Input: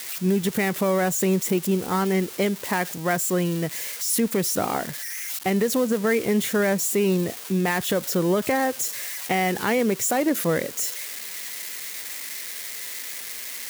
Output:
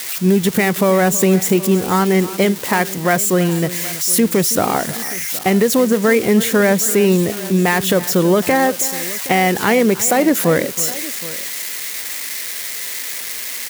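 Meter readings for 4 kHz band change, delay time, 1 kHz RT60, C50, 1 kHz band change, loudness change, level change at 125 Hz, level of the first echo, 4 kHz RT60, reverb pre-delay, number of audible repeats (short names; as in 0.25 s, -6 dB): +8.0 dB, 0.324 s, none, none, +8.0 dB, +8.0 dB, +8.0 dB, -16.0 dB, none, none, 2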